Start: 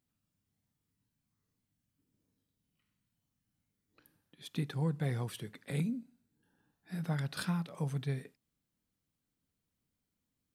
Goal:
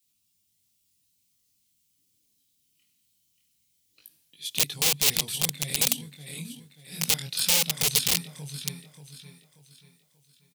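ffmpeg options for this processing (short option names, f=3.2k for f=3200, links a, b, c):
-af "flanger=delay=18.5:depth=7.6:speed=0.23,aecho=1:1:584|1168|1752|2336|2920:0.562|0.219|0.0855|0.0334|0.013,adynamicequalizer=threshold=0.00562:dfrequency=160:dqfactor=1.9:tfrequency=160:tqfactor=1.9:attack=5:release=100:ratio=0.375:range=2:mode=boostabove:tftype=bell,aeval=exprs='(mod(26.6*val(0)+1,2)-1)/26.6':c=same,aexciter=amount=9.3:drive=3.1:freq=2.3k,volume=-1dB"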